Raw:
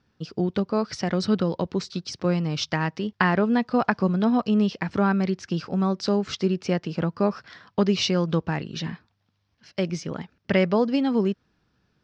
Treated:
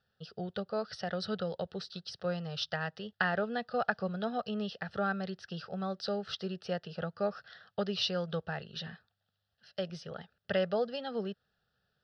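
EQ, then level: low shelf 120 Hz -4 dB; low shelf 260 Hz -5.5 dB; fixed phaser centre 1500 Hz, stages 8; -4.5 dB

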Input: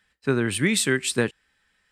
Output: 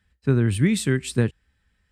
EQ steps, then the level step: bell 65 Hz +14 dB 2.2 oct; low shelf 370 Hz +8.5 dB; -6.5 dB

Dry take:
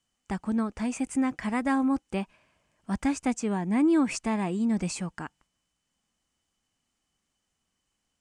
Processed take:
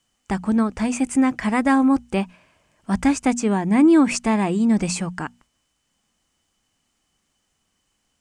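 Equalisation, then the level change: notches 60/120/180/240 Hz; +8.5 dB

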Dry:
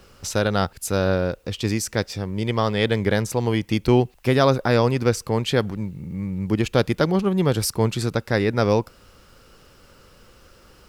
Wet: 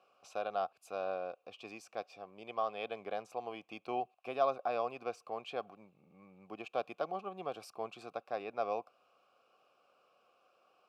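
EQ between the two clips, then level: vowel filter a; Bessel high-pass 170 Hz, order 2; high shelf 10000 Hz +8.5 dB; -4.0 dB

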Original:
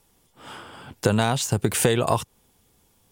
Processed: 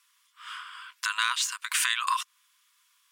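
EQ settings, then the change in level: brick-wall FIR high-pass 960 Hz; LPF 1800 Hz 6 dB/oct; tilt shelf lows -6 dB, about 1400 Hz; +4.5 dB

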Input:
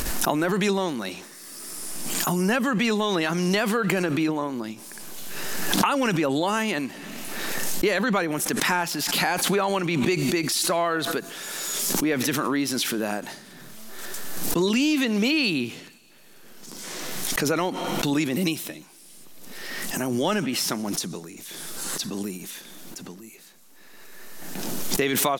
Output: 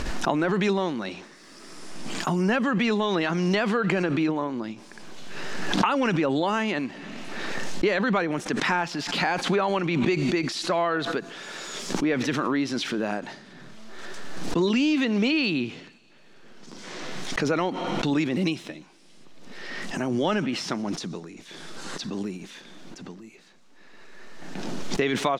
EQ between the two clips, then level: air absorption 130 m; 0.0 dB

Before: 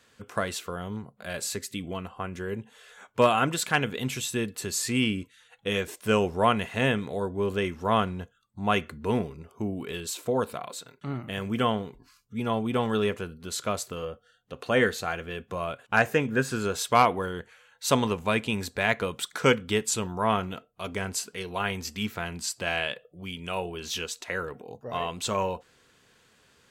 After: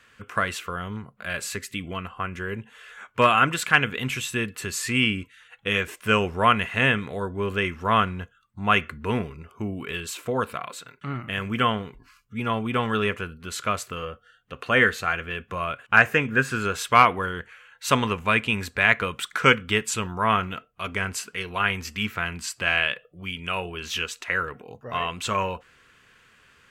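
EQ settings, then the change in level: low shelf 95 Hz +9 dB; band shelf 1800 Hz +9 dB; -1.0 dB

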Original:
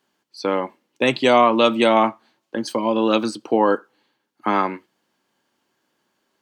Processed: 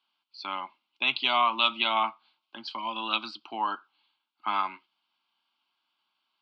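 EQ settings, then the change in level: band-pass 3400 Hz, Q 0.51; elliptic low-pass 6400 Hz; fixed phaser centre 1800 Hz, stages 6; 0.0 dB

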